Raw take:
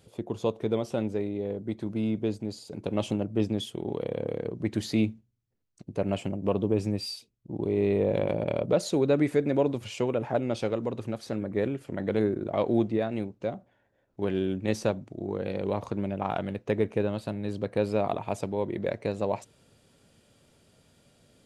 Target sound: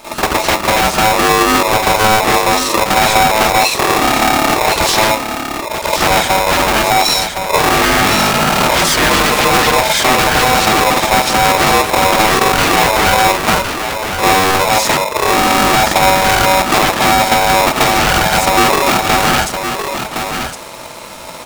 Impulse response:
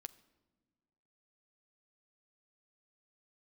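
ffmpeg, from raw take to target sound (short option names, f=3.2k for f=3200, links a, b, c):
-filter_complex "[0:a]aeval=exprs='0.266*sin(PI/2*7.94*val(0)/0.266)':c=same,acompressor=threshold=-20dB:ratio=6,aecho=1:1:1063:0.447,asplit=2[a][b];[1:a]atrim=start_sample=2205,adelay=46[c];[b][c]afir=irnorm=-1:irlink=0,volume=13.5dB[d];[a][d]amix=inputs=2:normalize=0,aeval=exprs='val(0)*sgn(sin(2*PI*760*n/s))':c=same"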